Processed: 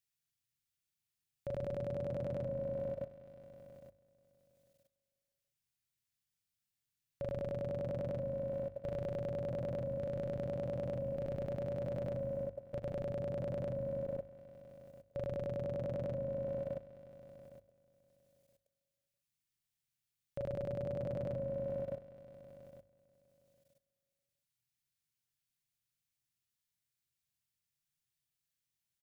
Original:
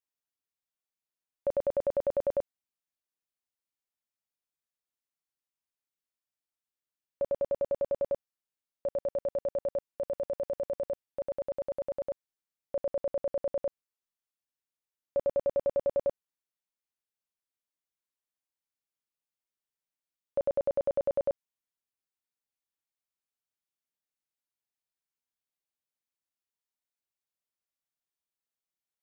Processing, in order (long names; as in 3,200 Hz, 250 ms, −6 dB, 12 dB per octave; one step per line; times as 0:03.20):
octave-band graphic EQ 125/250/500/1,000 Hz +12/−6/−12/−10 dB
on a send: echo whose low-pass opens from repeat to repeat 162 ms, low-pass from 200 Hz, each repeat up 1 octave, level −3 dB
on the sum: brickwall limiter −38 dBFS, peak gain reduction 8 dB
double-tracking delay 42 ms −5.5 dB
output level in coarse steps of 17 dB
mains-hum notches 50/100 Hz
level +13 dB